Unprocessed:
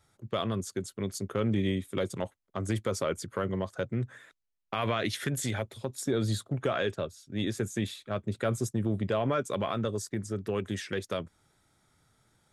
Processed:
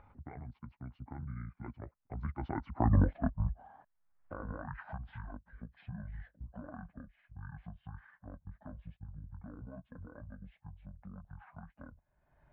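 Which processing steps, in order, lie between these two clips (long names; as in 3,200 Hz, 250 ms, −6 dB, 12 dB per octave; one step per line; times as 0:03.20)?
pitch shift by two crossfaded delay taps −11 semitones
source passing by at 0:02.98, 59 m/s, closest 8.7 metres
low-pass filter 1,700 Hz 24 dB per octave
parametric band 370 Hz −10.5 dB 0.96 octaves
upward compression, threshold −49 dBFS
level +10.5 dB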